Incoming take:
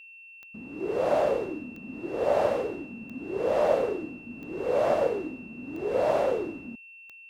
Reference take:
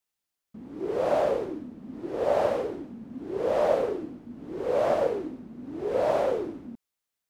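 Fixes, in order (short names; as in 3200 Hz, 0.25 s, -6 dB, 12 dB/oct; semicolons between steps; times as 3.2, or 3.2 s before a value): de-click; notch 2700 Hz, Q 30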